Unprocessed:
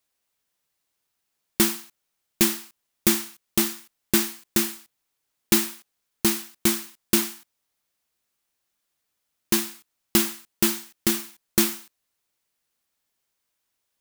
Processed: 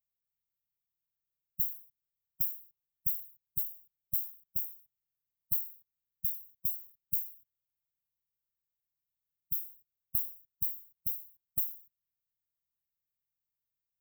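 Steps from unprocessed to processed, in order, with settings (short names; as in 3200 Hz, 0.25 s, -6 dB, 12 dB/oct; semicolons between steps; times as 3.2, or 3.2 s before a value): spectral contrast lowered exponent 0.34; brick-wall FIR band-stop 180–13000 Hz; gain -7.5 dB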